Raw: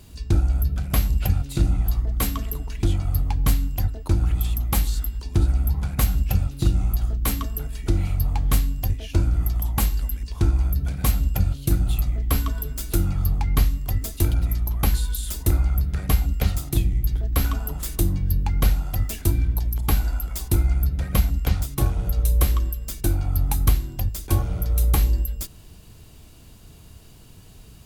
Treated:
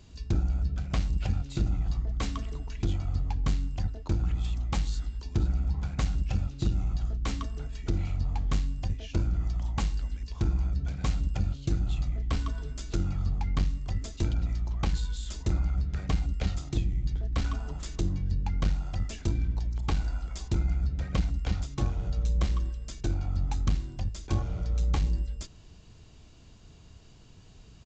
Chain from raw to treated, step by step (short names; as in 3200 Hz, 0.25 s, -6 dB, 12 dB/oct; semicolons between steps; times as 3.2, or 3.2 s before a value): downsampling 16000 Hz; core saturation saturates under 100 Hz; gain -6 dB